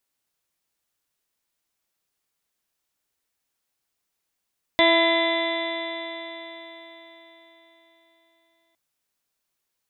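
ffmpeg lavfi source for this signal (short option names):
-f lavfi -i "aevalsrc='0.0794*pow(10,-3*t/4.38)*sin(2*PI*331.2*t)+0.126*pow(10,-3*t/4.38)*sin(2*PI*663.59*t)+0.0708*pow(10,-3*t/4.38)*sin(2*PI*998.35*t)+0.0126*pow(10,-3*t/4.38)*sin(2*PI*1336.65*t)+0.02*pow(10,-3*t/4.38)*sin(2*PI*1679.64*t)+0.106*pow(10,-3*t/4.38)*sin(2*PI*2028.44*t)+0.0224*pow(10,-3*t/4.38)*sin(2*PI*2384.15*t)+0.0126*pow(10,-3*t/4.38)*sin(2*PI*2747.8*t)+0.02*pow(10,-3*t/4.38)*sin(2*PI*3120.42*t)+0.0891*pow(10,-3*t/4.38)*sin(2*PI*3502.97*t)+0.0251*pow(10,-3*t/4.38)*sin(2*PI*3896.38*t)':d=3.96:s=44100"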